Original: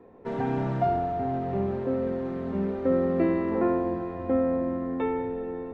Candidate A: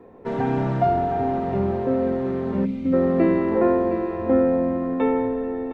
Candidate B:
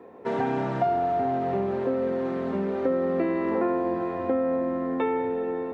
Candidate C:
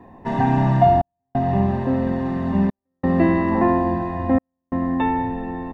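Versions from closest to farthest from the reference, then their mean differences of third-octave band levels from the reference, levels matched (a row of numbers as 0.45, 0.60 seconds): A, B, C; 1.5, 2.5, 6.0 decibels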